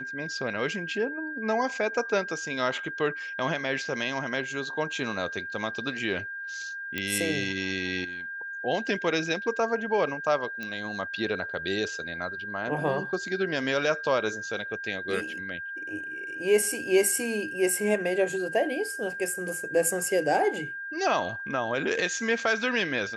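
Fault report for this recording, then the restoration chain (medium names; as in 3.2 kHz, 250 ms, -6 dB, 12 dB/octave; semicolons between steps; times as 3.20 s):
whine 1.6 kHz -34 dBFS
6.98 s: pop -15 dBFS
10.63 s: pop -22 dBFS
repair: de-click; band-stop 1.6 kHz, Q 30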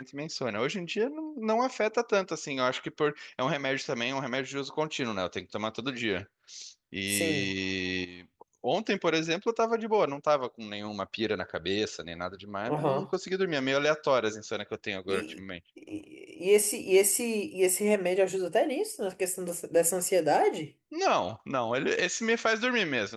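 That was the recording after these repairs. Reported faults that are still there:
nothing left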